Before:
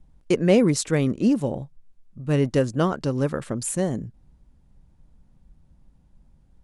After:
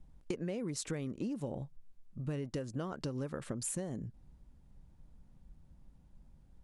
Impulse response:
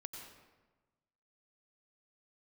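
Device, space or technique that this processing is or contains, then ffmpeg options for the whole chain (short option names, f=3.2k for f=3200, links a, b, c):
serial compression, leveller first: -af "acompressor=threshold=-22dB:ratio=2.5,acompressor=threshold=-31dB:ratio=8,volume=-3.5dB"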